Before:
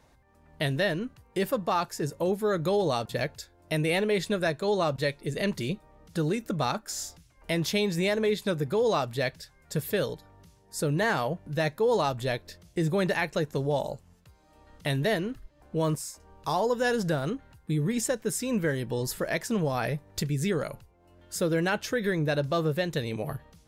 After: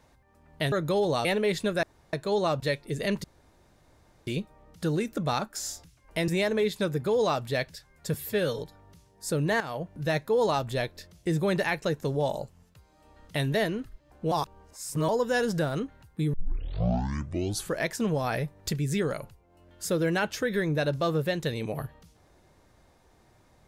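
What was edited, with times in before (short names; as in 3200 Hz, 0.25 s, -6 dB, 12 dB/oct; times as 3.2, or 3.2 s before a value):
0.72–2.49 cut
3.02–3.91 cut
4.49 insert room tone 0.30 s
5.6 insert room tone 1.03 s
7.61–7.94 cut
9.8–10.11 stretch 1.5×
11.11–11.45 fade in, from -12.5 dB
15.82–16.59 reverse
17.84 tape start 1.45 s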